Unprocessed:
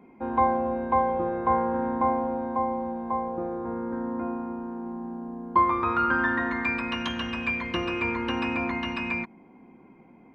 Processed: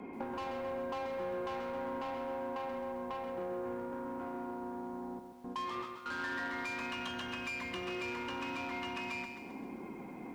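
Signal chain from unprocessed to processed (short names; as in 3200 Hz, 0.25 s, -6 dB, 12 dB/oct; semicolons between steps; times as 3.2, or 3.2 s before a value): frequency shift +13 Hz; in parallel at +2 dB: limiter -20.5 dBFS, peak gain reduction 10 dB; on the sum: soft clip -21.5 dBFS, distortion -10 dB; compressor 12:1, threshold -39 dBFS, peak gain reduction 16 dB; low shelf 99 Hz -5 dB; added harmonics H 3 -28 dB, 6 -31 dB, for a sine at -28.5 dBFS; 5.19–6.06 gate with hold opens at -35 dBFS; lo-fi delay 0.132 s, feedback 55%, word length 11-bit, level -6.5 dB; gain +1.5 dB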